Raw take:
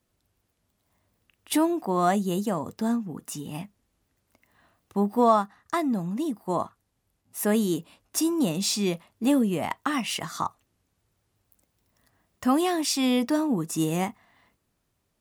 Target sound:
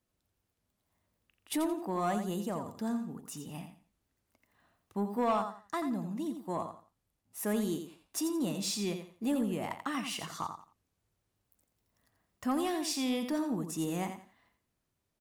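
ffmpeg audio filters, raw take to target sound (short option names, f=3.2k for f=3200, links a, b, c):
-af "aecho=1:1:86|172|258:0.376|0.094|0.0235,asoftclip=type=tanh:threshold=-14dB,volume=-8dB"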